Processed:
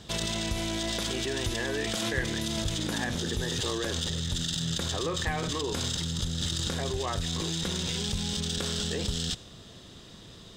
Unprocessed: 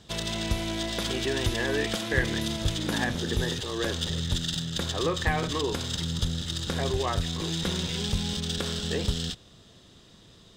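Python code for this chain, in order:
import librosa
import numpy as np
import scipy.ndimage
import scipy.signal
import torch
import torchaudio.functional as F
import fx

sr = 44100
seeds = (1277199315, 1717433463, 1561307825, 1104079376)

p1 = fx.dynamic_eq(x, sr, hz=7200.0, q=1.1, threshold_db=-47.0, ratio=4.0, max_db=5)
p2 = fx.over_compress(p1, sr, threshold_db=-34.0, ratio=-0.5)
p3 = p1 + (p2 * 10.0 ** (1.0 / 20.0))
y = p3 * 10.0 ** (-5.5 / 20.0)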